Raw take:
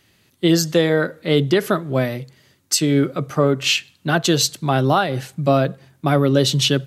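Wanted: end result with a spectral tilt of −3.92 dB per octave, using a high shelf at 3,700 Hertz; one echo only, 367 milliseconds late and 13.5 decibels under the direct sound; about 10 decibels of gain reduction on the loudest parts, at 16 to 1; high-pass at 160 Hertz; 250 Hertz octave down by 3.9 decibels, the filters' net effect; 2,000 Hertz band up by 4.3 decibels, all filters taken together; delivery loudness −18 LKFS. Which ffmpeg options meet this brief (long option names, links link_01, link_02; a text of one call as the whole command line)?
ffmpeg -i in.wav -af "highpass=160,equalizer=frequency=250:width_type=o:gain=-4.5,equalizer=frequency=2000:width_type=o:gain=7.5,highshelf=frequency=3700:gain=-5,acompressor=threshold=-22dB:ratio=16,aecho=1:1:367:0.211,volume=9.5dB" out.wav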